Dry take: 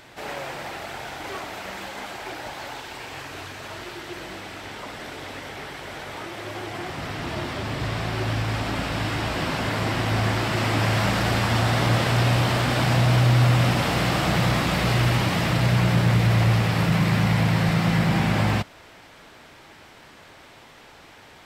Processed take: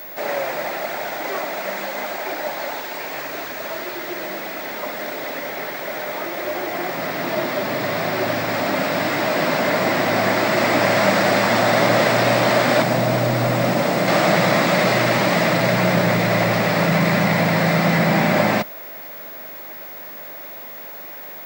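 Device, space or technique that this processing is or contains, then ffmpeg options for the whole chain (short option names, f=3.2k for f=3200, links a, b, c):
old television with a line whistle: -filter_complex "[0:a]highpass=f=170:w=0.5412,highpass=f=170:w=1.3066,equalizer=f=600:t=q:w=4:g=9,equalizer=f=2k:t=q:w=4:g=4,equalizer=f=3k:t=q:w=4:g=-6,lowpass=f=8.7k:w=0.5412,lowpass=f=8.7k:w=1.3066,aeval=exprs='val(0)+0.0112*sin(2*PI*15625*n/s)':c=same,asettb=1/sr,asplit=3[a][b][c];[a]atrim=end=12.824[d];[b]atrim=start=12.82:end=14.08,asetpts=PTS-STARTPTS,afade=t=in:d=0.004:c=qsin,afade=t=out:st=1.256:d=0.004:c=qsin,equalizer=f=2.5k:w=0.3:g=-5.5[e];[c]atrim=start=14.076[f];[d][e]acrossfade=d=0.004:c1=hsin:c2=qsin[g];[g][f]acrossfade=d=0.004:c1=qsin:c2=hsin,volume=5.5dB"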